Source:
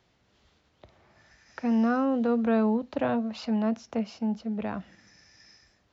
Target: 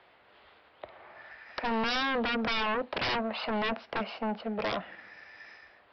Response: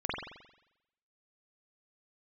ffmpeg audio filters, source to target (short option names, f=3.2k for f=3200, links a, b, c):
-filter_complex "[0:a]acrossover=split=430 3200:gain=0.1 1 0.0631[a][b][c];[a][b][c]amix=inputs=3:normalize=0,aresample=11025,aeval=exprs='0.126*sin(PI/2*7.08*val(0)/0.126)':c=same,aresample=44100,volume=-8.5dB"